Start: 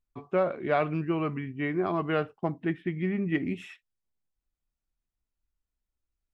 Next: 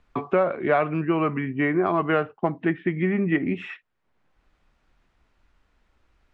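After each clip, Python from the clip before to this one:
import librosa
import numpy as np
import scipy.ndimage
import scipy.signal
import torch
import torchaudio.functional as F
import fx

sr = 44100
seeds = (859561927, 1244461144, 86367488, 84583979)

y = scipy.signal.sosfilt(scipy.signal.butter(2, 1900.0, 'lowpass', fs=sr, output='sos'), x)
y = fx.tilt_eq(y, sr, slope=2.0)
y = fx.band_squash(y, sr, depth_pct=70)
y = F.gain(torch.from_numpy(y), 8.0).numpy()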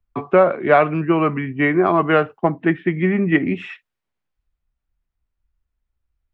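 y = fx.band_widen(x, sr, depth_pct=70)
y = F.gain(torch.from_numpy(y), 6.0).numpy()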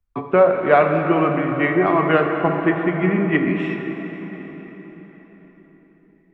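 y = fx.rev_plate(x, sr, seeds[0], rt60_s=4.9, hf_ratio=0.7, predelay_ms=0, drr_db=3.0)
y = F.gain(torch.from_numpy(y), -2.0).numpy()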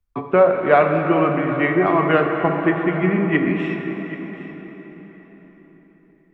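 y = x + 10.0 ** (-16.5 / 20.0) * np.pad(x, (int(778 * sr / 1000.0), 0))[:len(x)]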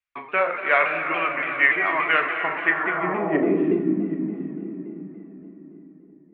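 y = fx.filter_sweep_bandpass(x, sr, from_hz=2200.0, to_hz=260.0, start_s=2.64, end_s=3.87, q=2.2)
y = fx.doubler(y, sr, ms=37.0, db=-10.5)
y = fx.vibrato_shape(y, sr, shape='saw_down', rate_hz=3.5, depth_cents=100.0)
y = F.gain(torch.from_numpy(y), 7.0).numpy()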